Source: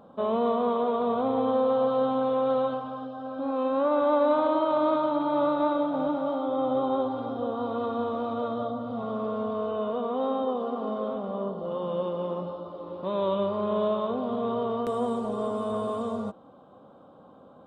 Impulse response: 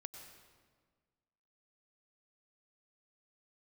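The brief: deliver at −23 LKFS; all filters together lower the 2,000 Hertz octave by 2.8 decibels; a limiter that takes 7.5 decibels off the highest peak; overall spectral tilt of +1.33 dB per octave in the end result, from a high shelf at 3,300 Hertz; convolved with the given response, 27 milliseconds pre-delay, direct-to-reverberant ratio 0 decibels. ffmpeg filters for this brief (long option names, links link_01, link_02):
-filter_complex "[0:a]equalizer=frequency=2000:width_type=o:gain=-3.5,highshelf=frequency=3300:gain=-3.5,alimiter=limit=-21dB:level=0:latency=1,asplit=2[link_01][link_02];[1:a]atrim=start_sample=2205,adelay=27[link_03];[link_02][link_03]afir=irnorm=-1:irlink=0,volume=4.5dB[link_04];[link_01][link_04]amix=inputs=2:normalize=0,volume=3.5dB"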